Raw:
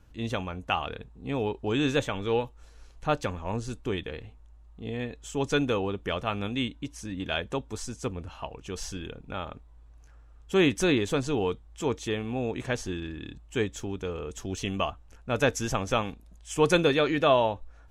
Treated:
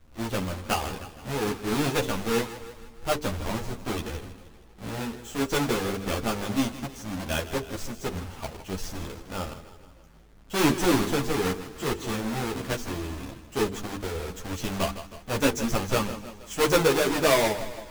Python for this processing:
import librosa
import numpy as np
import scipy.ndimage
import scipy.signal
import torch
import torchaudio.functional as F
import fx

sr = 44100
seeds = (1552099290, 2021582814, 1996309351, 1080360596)

p1 = fx.halfwave_hold(x, sr)
p2 = fx.hum_notches(p1, sr, base_hz=50, count=9)
p3 = p2 + fx.echo_feedback(p2, sr, ms=158, feedback_pct=53, wet_db=-13, dry=0)
y = fx.ensemble(p3, sr)